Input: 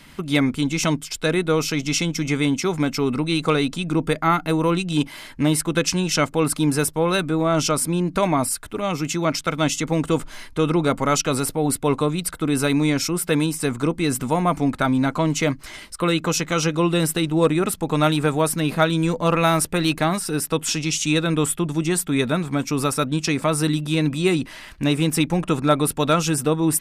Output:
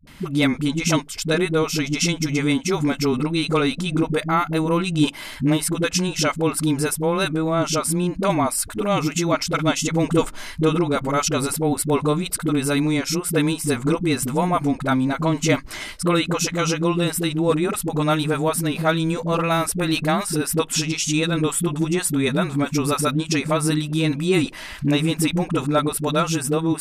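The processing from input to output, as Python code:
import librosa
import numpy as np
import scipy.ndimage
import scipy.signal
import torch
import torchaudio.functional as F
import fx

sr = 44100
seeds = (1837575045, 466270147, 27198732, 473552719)

y = fx.rider(x, sr, range_db=10, speed_s=0.5)
y = fx.dispersion(y, sr, late='highs', ms=72.0, hz=310.0)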